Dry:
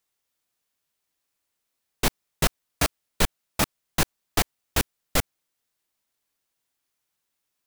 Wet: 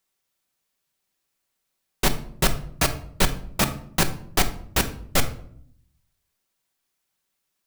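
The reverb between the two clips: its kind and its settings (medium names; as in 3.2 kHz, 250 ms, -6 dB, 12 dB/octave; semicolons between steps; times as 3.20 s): simulated room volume 1000 m³, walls furnished, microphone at 1.1 m; trim +1.5 dB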